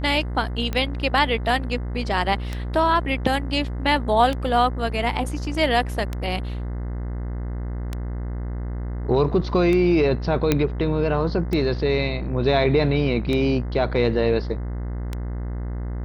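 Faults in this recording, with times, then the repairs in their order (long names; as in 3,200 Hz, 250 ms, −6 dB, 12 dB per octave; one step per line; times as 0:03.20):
mains buzz 60 Hz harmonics 35 −28 dBFS
scratch tick 33 1/3 rpm −13 dBFS
0:10.52: click −4 dBFS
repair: click removal
hum removal 60 Hz, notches 35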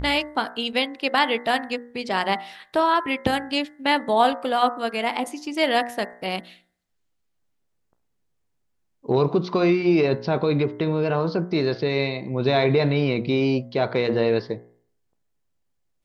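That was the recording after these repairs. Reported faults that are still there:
none of them is left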